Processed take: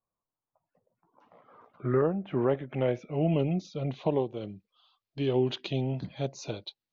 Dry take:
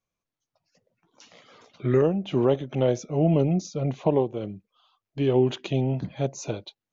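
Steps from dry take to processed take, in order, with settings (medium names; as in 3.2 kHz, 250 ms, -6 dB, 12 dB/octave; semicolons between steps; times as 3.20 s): low-pass sweep 1 kHz -> 4.4 kHz, 1.36–4.16 s; trim -5.5 dB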